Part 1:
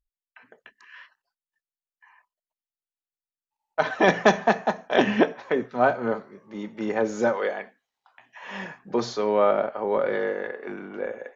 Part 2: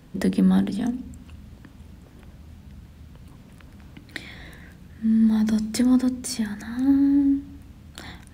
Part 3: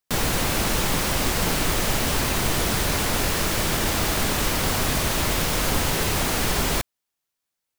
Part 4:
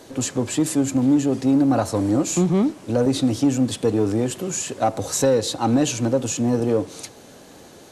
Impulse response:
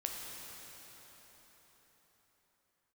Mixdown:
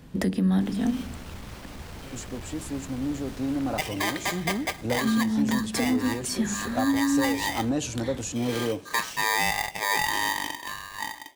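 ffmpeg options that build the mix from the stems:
-filter_complex "[0:a]dynaudnorm=framelen=290:gausssize=7:maxgain=8.5dB,aeval=exprs='val(0)*sgn(sin(2*PI*1400*n/s))':channel_layout=same,volume=-6dB,asplit=2[link_01][link_02];[1:a]volume=1.5dB[link_03];[2:a]highshelf=frequency=6400:gain=-10,asoftclip=type=hard:threshold=-21.5dB,adelay=500,volume=-17.5dB[link_04];[3:a]dynaudnorm=framelen=560:gausssize=7:maxgain=11.5dB,adelay=1950,volume=-14dB[link_05];[link_02]apad=whole_len=365150[link_06];[link_04][link_06]sidechaincompress=threshold=-31dB:ratio=8:attack=16:release=907[link_07];[link_01][link_03][link_07][link_05]amix=inputs=4:normalize=0,alimiter=limit=-15.5dB:level=0:latency=1:release=410"

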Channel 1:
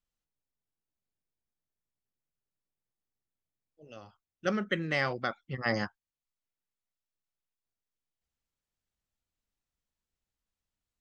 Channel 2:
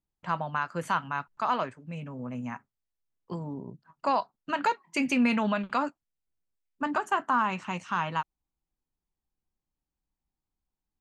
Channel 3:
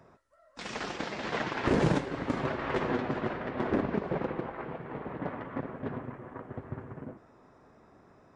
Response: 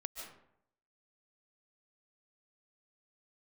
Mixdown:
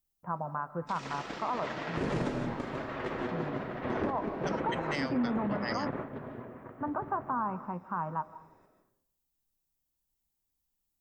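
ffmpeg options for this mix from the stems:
-filter_complex "[0:a]aemphasis=mode=production:type=75fm,volume=-5.5dB,asplit=2[link_01][link_02];[1:a]lowpass=frequency=1200:width=0.5412,lowpass=frequency=1200:width=1.3066,volume=-5dB,asplit=2[link_03][link_04];[link_04]volume=-7.5dB[link_05];[2:a]adelay=300,volume=1.5dB,asplit=2[link_06][link_07];[link_07]volume=-4.5dB[link_08];[link_02]apad=whole_len=381816[link_09];[link_06][link_09]sidechaingate=range=-33dB:threshold=-59dB:ratio=16:detection=peak[link_10];[3:a]atrim=start_sample=2205[link_11];[link_05][link_08]amix=inputs=2:normalize=0[link_12];[link_12][link_11]afir=irnorm=-1:irlink=0[link_13];[link_01][link_03][link_10][link_13]amix=inputs=4:normalize=0,alimiter=limit=-22.5dB:level=0:latency=1:release=93"

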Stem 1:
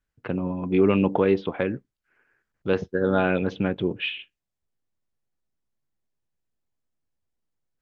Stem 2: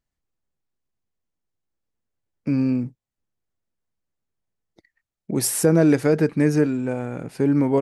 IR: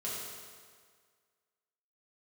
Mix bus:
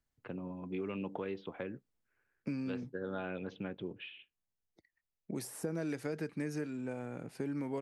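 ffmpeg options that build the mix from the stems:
-filter_complex "[0:a]volume=-14dB[link_01];[1:a]volume=-3dB,afade=type=out:start_time=2.18:duration=0.43:silence=0.375837[link_02];[link_01][link_02]amix=inputs=2:normalize=0,acrossover=split=120|1400[link_03][link_04][link_05];[link_03]acompressor=threshold=-59dB:ratio=4[link_06];[link_04]acompressor=threshold=-36dB:ratio=4[link_07];[link_05]acompressor=threshold=-47dB:ratio=4[link_08];[link_06][link_07][link_08]amix=inputs=3:normalize=0"

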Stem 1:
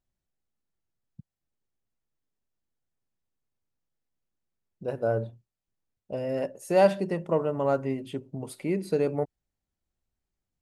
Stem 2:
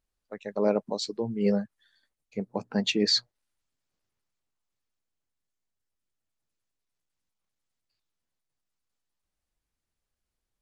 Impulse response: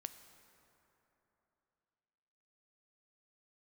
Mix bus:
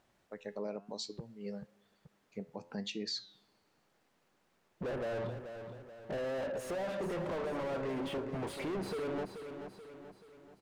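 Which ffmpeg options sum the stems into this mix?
-filter_complex "[0:a]acompressor=threshold=-34dB:ratio=4,asplit=2[link_01][link_02];[link_02]highpass=frequency=720:poles=1,volume=41dB,asoftclip=type=tanh:threshold=-20.5dB[link_03];[link_01][link_03]amix=inputs=2:normalize=0,lowpass=frequency=1300:poles=1,volume=-6dB,volume=-9dB,asplit=3[link_04][link_05][link_06];[link_05]volume=-9dB[link_07];[1:a]flanger=delay=9.1:depth=3:regen=85:speed=0.99:shape=sinusoidal,adynamicequalizer=threshold=0.00562:dfrequency=2500:dqfactor=0.7:tfrequency=2500:tqfactor=0.7:attack=5:release=100:ratio=0.375:range=2.5:mode=boostabove:tftype=highshelf,volume=-2.5dB,asplit=2[link_08][link_09];[link_09]volume=-24dB[link_10];[link_06]apad=whole_len=468212[link_11];[link_08][link_11]sidechaincompress=threshold=-56dB:ratio=4:attack=16:release=1160[link_12];[2:a]atrim=start_sample=2205[link_13];[link_10][link_13]afir=irnorm=-1:irlink=0[link_14];[link_07]aecho=0:1:432|864|1296|1728|2160|2592|3024:1|0.48|0.23|0.111|0.0531|0.0255|0.0122[link_15];[link_04][link_12][link_14][link_15]amix=inputs=4:normalize=0,alimiter=level_in=6dB:limit=-24dB:level=0:latency=1:release=200,volume=-6dB"

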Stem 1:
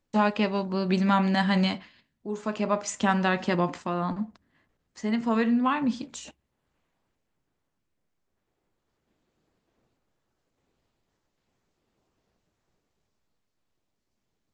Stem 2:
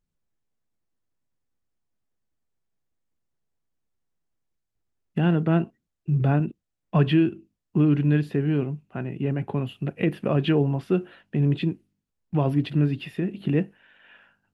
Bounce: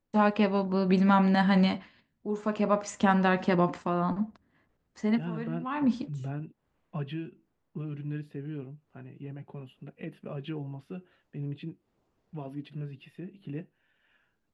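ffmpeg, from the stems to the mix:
ffmpeg -i stem1.wav -i stem2.wav -filter_complex "[0:a]highshelf=frequency=2600:gain=-9,volume=-3dB[link_01];[1:a]flanger=delay=4:depth=3.8:regen=-37:speed=0.4:shape=triangular,volume=-16dB,asplit=2[link_02][link_03];[link_03]apad=whole_len=641168[link_04];[link_01][link_04]sidechaincompress=threshold=-55dB:ratio=6:attack=25:release=164[link_05];[link_05][link_02]amix=inputs=2:normalize=0,dynaudnorm=framelen=120:gausssize=3:maxgain=4dB" out.wav

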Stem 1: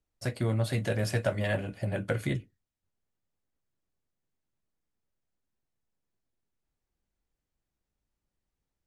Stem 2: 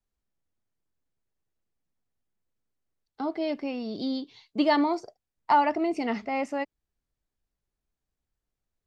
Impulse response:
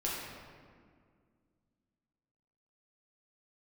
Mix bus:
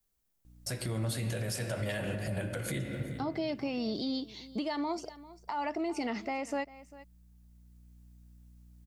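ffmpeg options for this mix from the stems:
-filter_complex "[0:a]highshelf=frequency=4500:gain=12,aeval=exprs='val(0)+0.000891*(sin(2*PI*60*n/s)+sin(2*PI*2*60*n/s)/2+sin(2*PI*3*60*n/s)/3+sin(2*PI*4*60*n/s)/4+sin(2*PI*5*60*n/s)/5)':channel_layout=same,adelay=450,volume=2.5dB,asplit=3[link_01][link_02][link_03];[link_02]volume=-10dB[link_04];[link_03]volume=-22dB[link_05];[1:a]aemphasis=mode=production:type=50kf,acompressor=threshold=-28dB:ratio=6,volume=1.5dB,asplit=3[link_06][link_07][link_08];[link_07]volume=-21dB[link_09];[link_08]apad=whole_len=410769[link_10];[link_01][link_10]sidechaincompress=threshold=-41dB:ratio=8:attack=16:release=1230[link_11];[2:a]atrim=start_sample=2205[link_12];[link_04][link_12]afir=irnorm=-1:irlink=0[link_13];[link_05][link_09]amix=inputs=2:normalize=0,aecho=0:1:396:1[link_14];[link_11][link_06][link_13][link_14]amix=inputs=4:normalize=0,alimiter=level_in=1.5dB:limit=-24dB:level=0:latency=1:release=175,volume=-1.5dB"

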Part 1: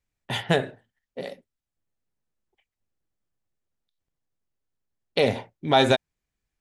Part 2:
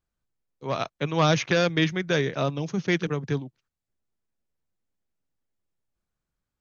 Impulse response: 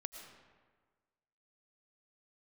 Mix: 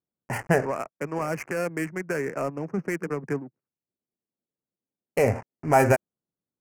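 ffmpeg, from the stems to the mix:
-filter_complex "[0:a]asubboost=boost=4:cutoff=98,aeval=exprs='val(0)*gte(abs(val(0)),0.0188)':channel_layout=same,volume=1dB[link_01];[1:a]highpass=220,alimiter=limit=-20.5dB:level=0:latency=1:release=304,volume=3dB,asplit=2[link_02][link_03];[link_03]apad=whole_len=291476[link_04];[link_01][link_04]sidechaincompress=threshold=-29dB:ratio=8:attack=16:release=390[link_05];[link_05][link_02]amix=inputs=2:normalize=0,adynamicsmooth=sensitivity=6:basefreq=580,asuperstop=centerf=3600:order=4:qfactor=1.1"

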